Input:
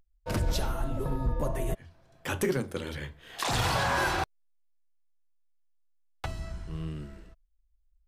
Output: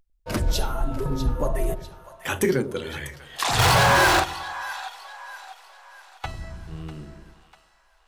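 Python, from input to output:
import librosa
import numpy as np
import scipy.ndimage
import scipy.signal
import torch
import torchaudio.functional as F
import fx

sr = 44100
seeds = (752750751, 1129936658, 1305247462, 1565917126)

y = fx.echo_split(x, sr, split_hz=660.0, low_ms=97, high_ms=646, feedback_pct=52, wet_db=-9.5)
y = fx.power_curve(y, sr, exponent=0.5, at=(3.59, 4.2))
y = fx.noise_reduce_blind(y, sr, reduce_db=6)
y = y * 10.0 ** (6.5 / 20.0)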